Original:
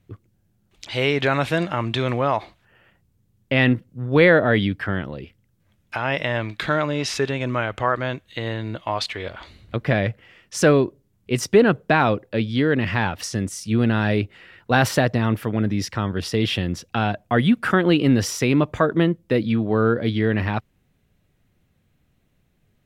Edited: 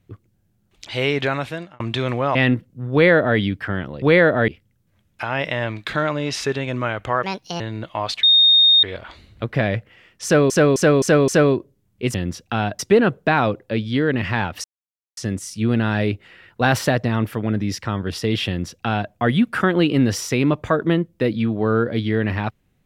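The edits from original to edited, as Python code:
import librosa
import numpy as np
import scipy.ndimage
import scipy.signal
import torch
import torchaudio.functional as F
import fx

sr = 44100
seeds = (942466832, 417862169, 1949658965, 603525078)

y = fx.edit(x, sr, fx.fade_out_span(start_s=1.18, length_s=0.62),
    fx.cut(start_s=2.35, length_s=1.19),
    fx.duplicate(start_s=4.11, length_s=0.46, to_s=5.21),
    fx.speed_span(start_s=7.96, length_s=0.56, speed=1.51),
    fx.insert_tone(at_s=9.15, length_s=0.6, hz=3690.0, db=-9.5),
    fx.repeat(start_s=10.56, length_s=0.26, count=5),
    fx.insert_silence(at_s=13.27, length_s=0.53),
    fx.duplicate(start_s=16.57, length_s=0.65, to_s=11.42), tone=tone)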